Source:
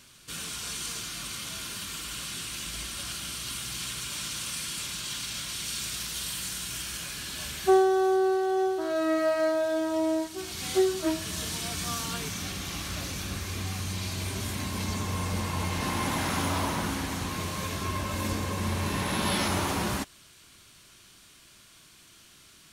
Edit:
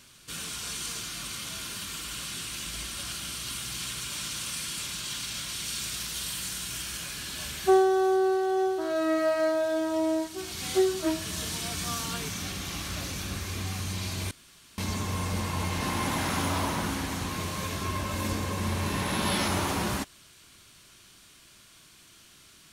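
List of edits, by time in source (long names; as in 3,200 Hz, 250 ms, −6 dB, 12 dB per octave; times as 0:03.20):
0:14.31–0:14.78: fill with room tone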